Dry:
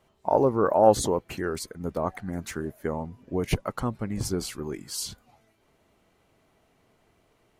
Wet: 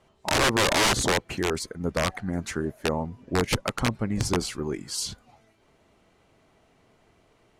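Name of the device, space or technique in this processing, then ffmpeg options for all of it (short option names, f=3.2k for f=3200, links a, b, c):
overflowing digital effects unit: -af "aeval=exprs='(mod(8.91*val(0)+1,2)-1)/8.91':c=same,lowpass=9.2k,volume=3.5dB"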